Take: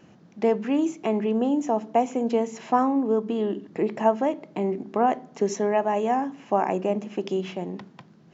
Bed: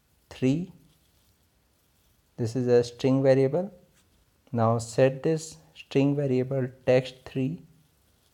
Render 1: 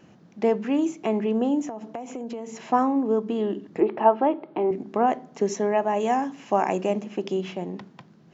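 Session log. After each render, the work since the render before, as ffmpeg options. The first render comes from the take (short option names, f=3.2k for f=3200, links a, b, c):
-filter_complex "[0:a]asettb=1/sr,asplit=3[a][b][c];[a]atrim=end=1.664[d];[b]atrim=start=1.66:end=2.65,asetpts=PTS-STARTPTS,afade=t=in:d=0.004:c=qsin,afade=t=out:st=0.986:d=0.004:c=qsin,acompressor=threshold=-29dB:ratio=16:attack=3.2:release=140:knee=1:detection=peak[e];[c]atrim=start=2.646[f];[d][e]acrossfade=d=0.004:c1=hsin:c2=qsin[g];[g][f]acrossfade=d=0.004:c1=qsin:c2=hsin,asettb=1/sr,asplit=3[h][i][j];[h]atrim=end=3.804[k];[i]atrim=start=3.8:end=4.71,asetpts=PTS-STARTPTS,afade=t=in:d=0.004:c=qsin,afade=t=out:st=0.906:d=0.004:c=qsin,highpass=140,equalizer=f=190:t=q:w=4:g=-9,equalizer=f=350:t=q:w=4:g=8,equalizer=f=840:t=q:w=4:g=6,equalizer=f=1.3k:t=q:w=4:g=5,equalizer=f=2k:t=q:w=4:g=-4,lowpass=f=3.5k:w=0.5412,lowpass=f=3.5k:w=1.3066[l];[j]atrim=start=4.706[m];[k][l]acrossfade=d=0.004:c1=hsin:c2=qsin[n];[n][m]acrossfade=d=0.004:c1=qsin:c2=hsin,asettb=1/sr,asplit=3[o][p][q];[o]atrim=end=6.004[r];[p]atrim=start=6:end=7.01,asetpts=PTS-STARTPTS,afade=t=in:d=0.004:c=qsin,afade=t=out:st=1.006:d=0.004:c=qsin,highshelf=f=2.8k:g=9[s];[q]atrim=start=7.006[t];[r][s]acrossfade=d=0.004:c1=hsin:c2=qsin[u];[u][t]acrossfade=d=0.004:c1=qsin:c2=hsin"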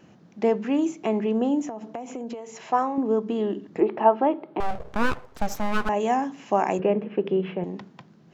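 -filter_complex "[0:a]asettb=1/sr,asplit=3[a][b][c];[a]atrim=end=2.344[d];[b]atrim=start=2.34:end=2.98,asetpts=PTS-STARTPTS,afade=t=in:d=0.004:c=qsin,afade=t=out:st=0.636:d=0.004:c=qsin,equalizer=f=230:w=1.5:g=-10.5[e];[c]atrim=start=2.976[f];[d][e]acrossfade=d=0.004:c1=hsin:c2=qsin[g];[g][f]acrossfade=d=0.004:c1=qsin:c2=hsin,asettb=1/sr,asplit=3[h][i][j];[h]atrim=end=4.604[k];[i]atrim=start=4.6:end=5.89,asetpts=PTS-STARTPTS,afade=t=in:d=0.004:c=qsin,afade=t=out:st=1.286:d=0.004:c=qsin,aeval=exprs='abs(val(0))':c=same[l];[j]atrim=start=5.886[m];[k][l]acrossfade=d=0.004:c1=hsin:c2=qsin[n];[n][m]acrossfade=d=0.004:c1=qsin:c2=hsin,asettb=1/sr,asplit=3[o][p][q];[o]atrim=end=6.794[r];[p]atrim=start=6.79:end=7.64,asetpts=PTS-STARTPTS,afade=t=in:d=0.004:c=qsin,afade=t=out:st=0.846:d=0.004:c=qsin,highpass=130,equalizer=f=160:t=q:w=4:g=9,equalizer=f=460:t=q:w=4:g=10,equalizer=f=730:t=q:w=4:g=-3,equalizer=f=1.6k:t=q:w=4:g=3,lowpass=f=2.9k:w=0.5412,lowpass=f=2.9k:w=1.3066[s];[q]atrim=start=7.636[t];[r][s]acrossfade=d=0.004:c1=hsin:c2=qsin[u];[u][t]acrossfade=d=0.004:c1=qsin:c2=hsin"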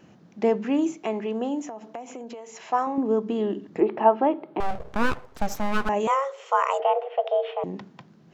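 -filter_complex "[0:a]asettb=1/sr,asplit=3[a][b][c];[a]atrim=end=0.984[d];[b]atrim=start=0.98:end=2.87,asetpts=PTS-STARTPTS,afade=t=in:d=0.004:c=qsin,afade=t=out:st=1.886:d=0.004:c=qsin,lowshelf=f=300:g=-10[e];[c]atrim=start=2.866[f];[d][e]acrossfade=d=0.004:c1=hsin:c2=qsin[g];[g][f]acrossfade=d=0.004:c1=qsin:c2=hsin,asettb=1/sr,asplit=3[h][i][j];[h]atrim=end=6.074[k];[i]atrim=start=6.07:end=7.64,asetpts=PTS-STARTPTS,afade=t=in:d=0.004:c=qsin,afade=t=out:st=1.566:d=0.004:c=qsin,afreqshift=270[l];[j]atrim=start=7.636[m];[k][l]acrossfade=d=0.004:c1=hsin:c2=qsin[n];[n][m]acrossfade=d=0.004:c1=qsin:c2=hsin"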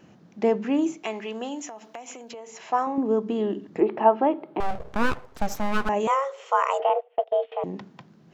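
-filter_complex "[0:a]asettb=1/sr,asplit=3[a][b][c];[a]atrim=end=1.034[d];[b]atrim=start=1.03:end=2.34,asetpts=PTS-STARTPTS,afade=t=in:d=0.004:c=qsin,afade=t=out:st=1.306:d=0.004:c=qsin,tiltshelf=f=1.1k:g=-7[e];[c]atrim=start=2.336[f];[d][e]acrossfade=d=0.004:c1=hsin:c2=qsin[g];[g][f]acrossfade=d=0.004:c1=qsin:c2=hsin,asettb=1/sr,asplit=3[h][i][j];[h]atrim=end=6.894[k];[i]atrim=start=6.89:end=7.52,asetpts=PTS-STARTPTS,afade=t=in:d=0.004:c=qsin,afade=t=out:st=0.626:d=0.004:c=qsin,agate=range=-23dB:threshold=-28dB:ratio=16:release=100:detection=peak[l];[j]atrim=start=7.516[m];[k][l]acrossfade=d=0.004:c1=hsin:c2=qsin[n];[n][m]acrossfade=d=0.004:c1=qsin:c2=hsin"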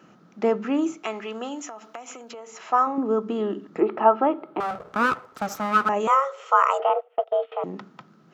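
-af "highpass=160,equalizer=f=1.3k:w=5.9:g=14.5"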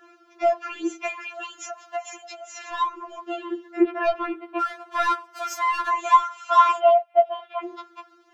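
-filter_complex "[0:a]asplit=2[a][b];[b]highpass=f=720:p=1,volume=12dB,asoftclip=type=tanh:threshold=-4dB[c];[a][c]amix=inputs=2:normalize=0,lowpass=f=6.4k:p=1,volume=-6dB,afftfilt=real='re*4*eq(mod(b,16),0)':imag='im*4*eq(mod(b,16),0)':win_size=2048:overlap=0.75"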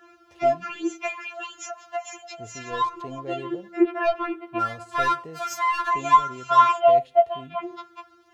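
-filter_complex "[1:a]volume=-15.5dB[a];[0:a][a]amix=inputs=2:normalize=0"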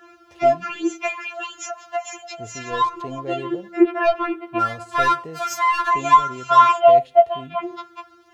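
-af "volume=4.5dB,alimiter=limit=-3dB:level=0:latency=1"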